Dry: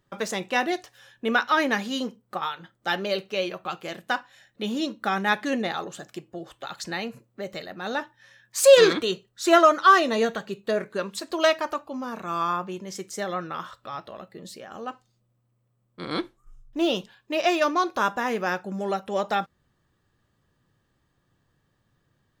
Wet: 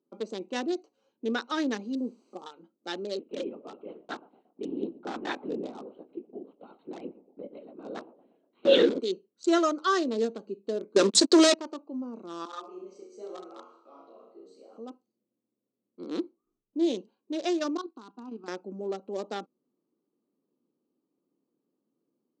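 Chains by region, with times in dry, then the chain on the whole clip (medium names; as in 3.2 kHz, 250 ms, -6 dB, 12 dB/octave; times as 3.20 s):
1.95–2.46 s: low-pass 1.1 kHz 24 dB/octave + word length cut 8-bit, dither triangular
3.19–9.00 s: doubling 25 ms -13.5 dB + band-passed feedback delay 119 ms, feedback 54%, band-pass 560 Hz, level -15.5 dB + LPC vocoder at 8 kHz whisper
10.96–11.54 s: bass shelf 74 Hz -11 dB + waveshaping leveller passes 5
12.45–14.78 s: high-pass 430 Hz + flutter echo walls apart 5.6 m, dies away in 0.73 s + three-phase chorus
17.77–18.48 s: companding laws mixed up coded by A + static phaser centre 2.1 kHz, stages 6 + level held to a coarse grid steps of 11 dB
whole clip: local Wiener filter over 25 samples; elliptic band-pass 250–7700 Hz, stop band 40 dB; high-order bell 1.3 kHz -11 dB 2.6 oct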